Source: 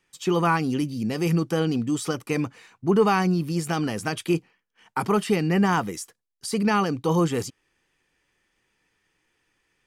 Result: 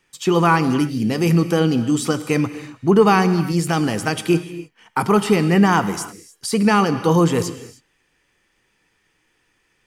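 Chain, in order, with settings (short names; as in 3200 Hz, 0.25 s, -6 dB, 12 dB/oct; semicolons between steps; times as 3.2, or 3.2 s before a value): non-linear reverb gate 0.33 s flat, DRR 11.5 dB; gain +6 dB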